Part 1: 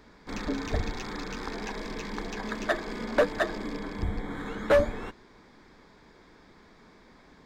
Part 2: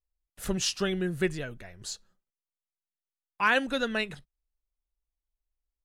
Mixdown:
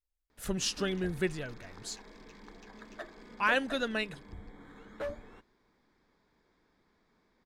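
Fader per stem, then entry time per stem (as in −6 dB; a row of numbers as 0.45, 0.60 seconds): −16.5, −3.5 decibels; 0.30, 0.00 seconds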